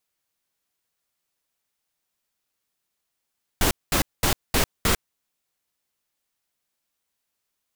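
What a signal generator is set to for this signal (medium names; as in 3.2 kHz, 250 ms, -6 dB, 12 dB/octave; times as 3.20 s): noise bursts pink, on 0.10 s, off 0.21 s, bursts 5, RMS -20 dBFS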